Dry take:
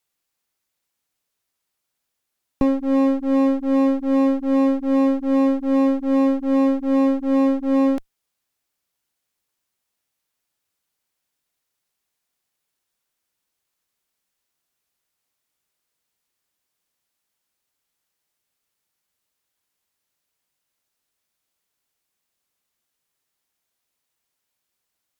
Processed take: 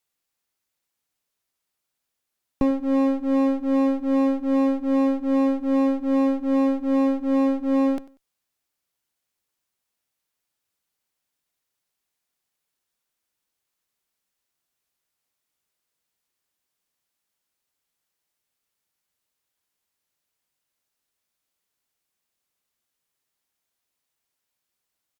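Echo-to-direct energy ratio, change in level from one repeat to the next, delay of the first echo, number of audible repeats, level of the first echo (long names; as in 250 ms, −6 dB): −20.0 dB, −12.5 dB, 95 ms, 2, −20.0 dB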